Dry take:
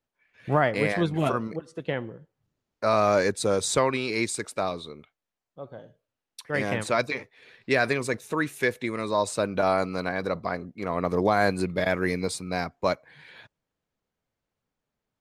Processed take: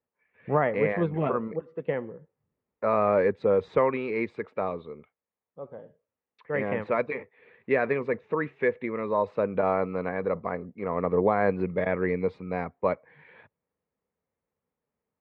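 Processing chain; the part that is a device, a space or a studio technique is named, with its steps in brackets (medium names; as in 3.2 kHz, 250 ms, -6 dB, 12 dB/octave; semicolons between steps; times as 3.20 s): bass cabinet (cabinet simulation 73–2100 Hz, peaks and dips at 120 Hz -8 dB, 310 Hz -5 dB, 470 Hz +5 dB, 680 Hz -4 dB, 1.5 kHz -7 dB)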